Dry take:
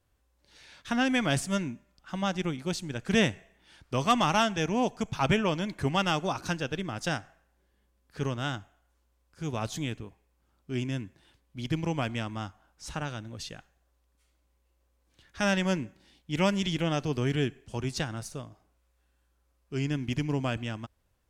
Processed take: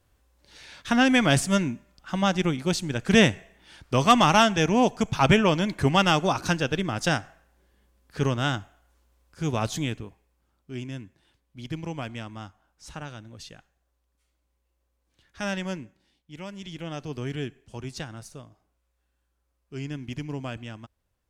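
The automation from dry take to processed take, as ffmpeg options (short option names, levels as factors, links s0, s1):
-af "volume=6.68,afade=t=out:st=9.45:d=1.28:silence=0.316228,afade=t=out:st=15.58:d=0.87:silence=0.298538,afade=t=in:st=16.45:d=0.72:silence=0.316228"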